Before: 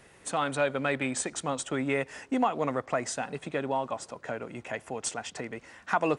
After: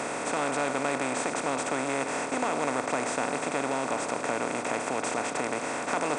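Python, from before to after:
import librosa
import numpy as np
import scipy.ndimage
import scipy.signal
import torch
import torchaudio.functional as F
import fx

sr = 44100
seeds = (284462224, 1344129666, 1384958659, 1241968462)

y = fx.bin_compress(x, sr, power=0.2)
y = y * 10.0 ** (-9.0 / 20.0)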